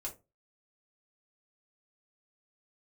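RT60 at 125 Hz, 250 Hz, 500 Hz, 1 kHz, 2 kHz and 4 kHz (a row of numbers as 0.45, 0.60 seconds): 0.35, 0.30, 0.30, 0.25, 0.20, 0.15 seconds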